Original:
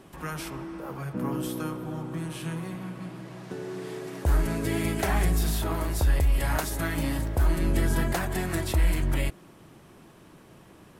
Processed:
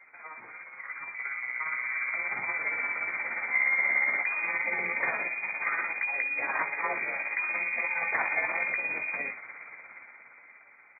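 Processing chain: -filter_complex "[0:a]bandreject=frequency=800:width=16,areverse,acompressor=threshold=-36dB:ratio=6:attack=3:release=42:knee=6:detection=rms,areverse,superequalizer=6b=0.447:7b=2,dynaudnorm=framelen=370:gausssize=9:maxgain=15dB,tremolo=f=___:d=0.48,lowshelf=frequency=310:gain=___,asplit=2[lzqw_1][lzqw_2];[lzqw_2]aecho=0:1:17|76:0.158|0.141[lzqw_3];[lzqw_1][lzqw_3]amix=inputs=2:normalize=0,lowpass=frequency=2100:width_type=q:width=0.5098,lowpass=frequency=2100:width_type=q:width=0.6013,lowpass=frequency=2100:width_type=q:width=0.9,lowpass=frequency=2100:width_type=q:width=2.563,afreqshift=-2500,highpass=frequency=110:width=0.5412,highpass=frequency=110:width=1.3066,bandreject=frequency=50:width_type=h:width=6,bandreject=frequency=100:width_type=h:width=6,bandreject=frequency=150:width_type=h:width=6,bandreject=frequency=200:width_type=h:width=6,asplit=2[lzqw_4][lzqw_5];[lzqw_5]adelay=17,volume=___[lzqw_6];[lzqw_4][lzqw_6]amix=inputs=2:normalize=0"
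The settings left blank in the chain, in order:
17, -8.5, -5.5dB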